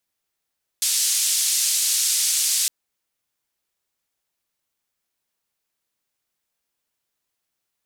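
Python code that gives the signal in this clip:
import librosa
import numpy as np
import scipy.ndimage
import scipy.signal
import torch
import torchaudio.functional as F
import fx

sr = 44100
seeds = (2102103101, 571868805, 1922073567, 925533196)

y = fx.band_noise(sr, seeds[0], length_s=1.86, low_hz=4700.0, high_hz=9400.0, level_db=-21.0)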